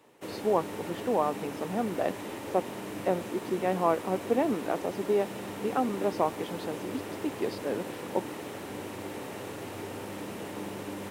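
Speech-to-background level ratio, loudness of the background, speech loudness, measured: 7.5 dB, −39.0 LKFS, −31.5 LKFS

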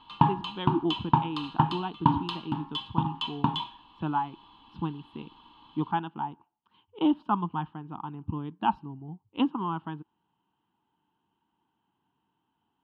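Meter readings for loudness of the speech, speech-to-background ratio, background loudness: −33.0 LKFS, −3.5 dB, −29.5 LKFS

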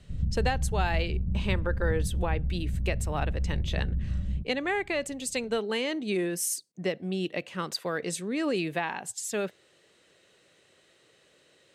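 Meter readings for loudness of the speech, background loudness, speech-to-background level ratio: −31.5 LKFS, −32.0 LKFS, 0.5 dB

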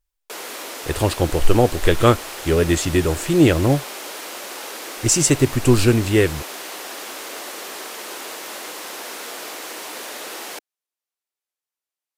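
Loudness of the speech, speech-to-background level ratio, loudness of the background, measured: −18.5 LKFS, 13.0 dB, −31.5 LKFS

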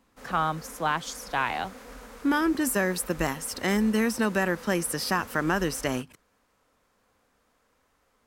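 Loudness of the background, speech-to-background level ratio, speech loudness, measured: −45.0 LKFS, 17.5 dB, −27.5 LKFS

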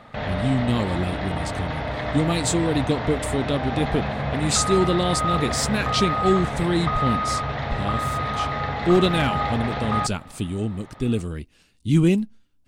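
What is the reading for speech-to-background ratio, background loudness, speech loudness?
2.5 dB, −26.5 LKFS, −24.0 LKFS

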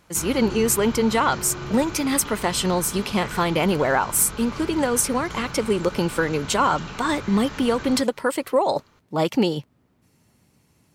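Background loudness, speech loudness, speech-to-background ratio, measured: −35.0 LKFS, −22.0 LKFS, 13.0 dB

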